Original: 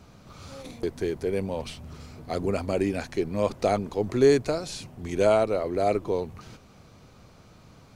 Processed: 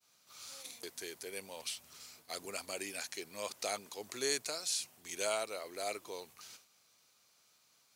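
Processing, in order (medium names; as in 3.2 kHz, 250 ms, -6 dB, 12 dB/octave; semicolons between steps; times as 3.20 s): differentiator; expander -60 dBFS; trim +5 dB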